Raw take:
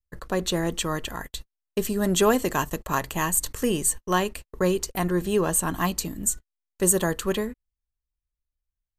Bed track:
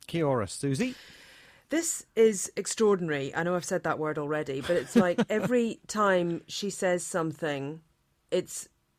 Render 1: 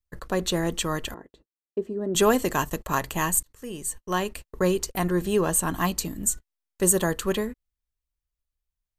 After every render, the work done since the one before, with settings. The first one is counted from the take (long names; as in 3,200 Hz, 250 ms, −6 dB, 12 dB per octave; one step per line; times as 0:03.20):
0:01.14–0:02.15: resonant band-pass 360 Hz, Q 1.8
0:03.43–0:04.48: fade in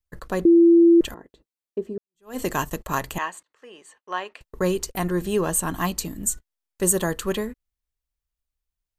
0:00.45–0:01.01: beep over 338 Hz −10 dBFS
0:01.98–0:02.39: fade in exponential
0:03.18–0:04.41: band-pass filter 620–2,900 Hz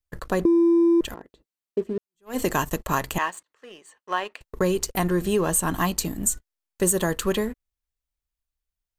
leveller curve on the samples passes 1
downward compressor 3 to 1, threshold −19 dBFS, peak gain reduction 7 dB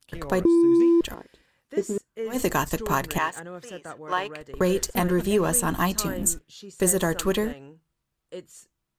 mix in bed track −10.5 dB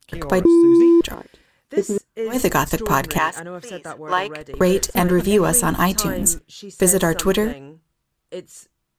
level +6 dB